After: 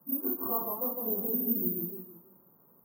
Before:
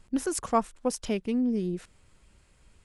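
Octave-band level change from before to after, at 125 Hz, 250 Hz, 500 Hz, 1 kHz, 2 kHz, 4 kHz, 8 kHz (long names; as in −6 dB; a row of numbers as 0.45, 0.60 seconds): −6.0 dB, −7.0 dB, −6.0 dB, −9.0 dB, below −20 dB, below −35 dB, below −25 dB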